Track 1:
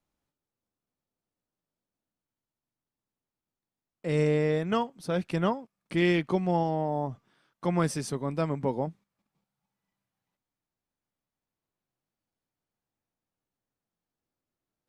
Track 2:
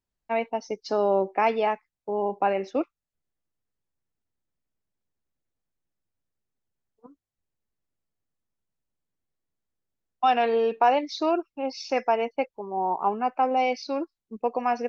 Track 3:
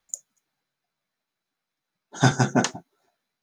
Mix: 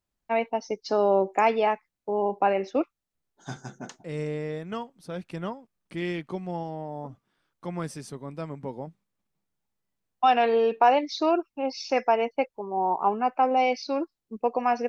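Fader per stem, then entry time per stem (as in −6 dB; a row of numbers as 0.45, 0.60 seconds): −6.5, +1.0, −19.0 decibels; 0.00, 0.00, 1.25 seconds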